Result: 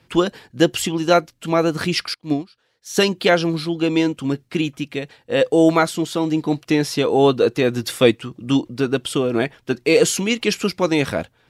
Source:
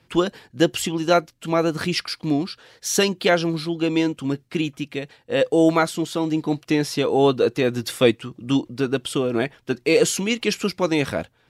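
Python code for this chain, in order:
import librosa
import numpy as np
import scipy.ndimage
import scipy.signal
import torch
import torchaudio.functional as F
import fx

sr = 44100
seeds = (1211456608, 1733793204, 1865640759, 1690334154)

y = fx.upward_expand(x, sr, threshold_db=-30.0, expansion=2.5, at=(2.14, 2.97))
y = y * librosa.db_to_amplitude(2.5)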